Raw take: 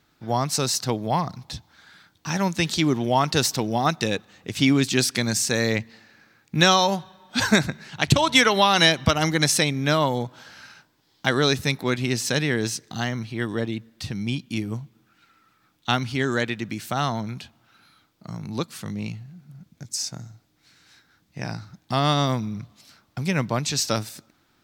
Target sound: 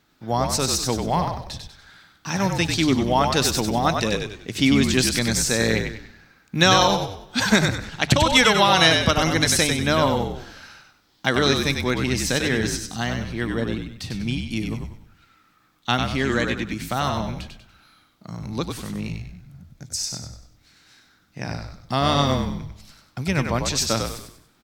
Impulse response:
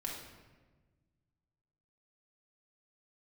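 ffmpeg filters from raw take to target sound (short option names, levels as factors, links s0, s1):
-filter_complex "[0:a]bandreject=f=50:t=h:w=6,bandreject=f=100:t=h:w=6,bandreject=f=150:t=h:w=6,asplit=6[s0][s1][s2][s3][s4][s5];[s1]adelay=96,afreqshift=-51,volume=0.562[s6];[s2]adelay=192,afreqshift=-102,volume=0.209[s7];[s3]adelay=288,afreqshift=-153,volume=0.0767[s8];[s4]adelay=384,afreqshift=-204,volume=0.0285[s9];[s5]adelay=480,afreqshift=-255,volume=0.0106[s10];[s0][s6][s7][s8][s9][s10]amix=inputs=6:normalize=0,asplit=2[s11][s12];[1:a]atrim=start_sample=2205,afade=t=out:st=0.42:d=0.01,atrim=end_sample=18963[s13];[s12][s13]afir=irnorm=-1:irlink=0,volume=0.1[s14];[s11][s14]amix=inputs=2:normalize=0"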